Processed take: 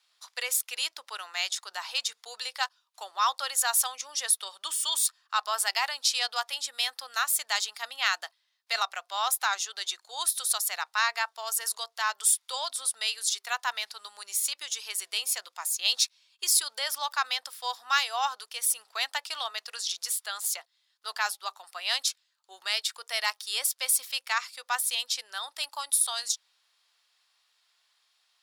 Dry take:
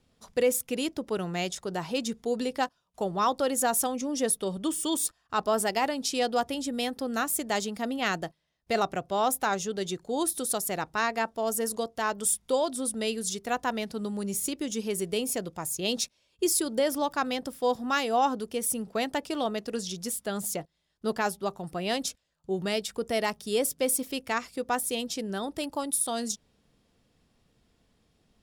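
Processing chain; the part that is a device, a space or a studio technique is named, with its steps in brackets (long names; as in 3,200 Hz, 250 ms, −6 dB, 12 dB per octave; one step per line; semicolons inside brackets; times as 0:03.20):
headphones lying on a table (high-pass filter 1,000 Hz 24 dB per octave; parametric band 4,200 Hz +6.5 dB 0.58 octaves)
level +3 dB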